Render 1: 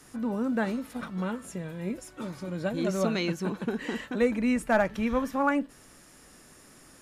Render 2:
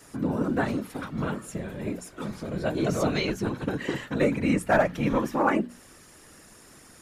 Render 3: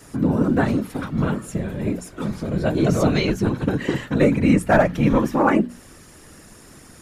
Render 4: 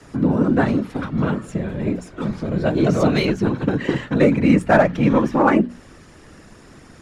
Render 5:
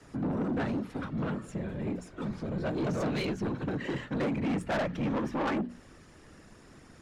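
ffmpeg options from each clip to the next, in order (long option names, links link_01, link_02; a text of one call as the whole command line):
ffmpeg -i in.wav -af "afftfilt=real='hypot(re,im)*cos(2*PI*random(0))':imag='hypot(re,im)*sin(2*PI*random(1))':win_size=512:overlap=0.75,bandreject=frequency=60:width_type=h:width=6,bandreject=frequency=120:width_type=h:width=6,bandreject=frequency=180:width_type=h:width=6,bandreject=frequency=240:width_type=h:width=6,volume=8.5dB" out.wav
ffmpeg -i in.wav -af "lowshelf=frequency=290:gain=7,volume=4dB" out.wav
ffmpeg -i in.wav -filter_complex "[0:a]acrossover=split=120|1100[link_01][link_02][link_03];[link_01]alimiter=level_in=5.5dB:limit=-24dB:level=0:latency=1:release=165,volume=-5.5dB[link_04];[link_04][link_02][link_03]amix=inputs=3:normalize=0,adynamicsmooth=sensitivity=2.5:basefreq=5500,volume=2dB" out.wav
ffmpeg -i in.wav -af "asoftclip=type=tanh:threshold=-17.5dB,volume=-9dB" out.wav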